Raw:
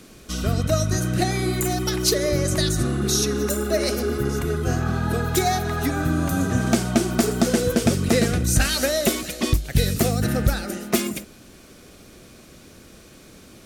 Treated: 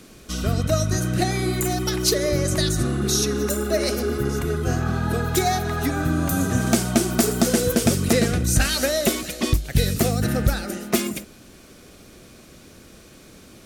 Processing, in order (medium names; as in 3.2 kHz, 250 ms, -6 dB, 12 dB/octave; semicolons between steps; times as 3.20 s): 6.29–8.13 s: treble shelf 7.5 kHz +8.5 dB